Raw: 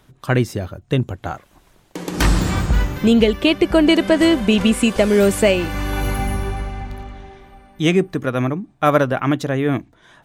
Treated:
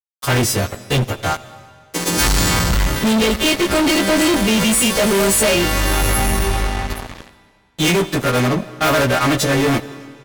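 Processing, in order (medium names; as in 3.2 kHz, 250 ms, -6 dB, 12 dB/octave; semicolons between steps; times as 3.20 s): partials quantised in pitch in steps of 2 st; fuzz box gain 26 dB, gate -32 dBFS; delay 85 ms -21.5 dB; reverberation RT60 1.9 s, pre-delay 105 ms, DRR 17.5 dB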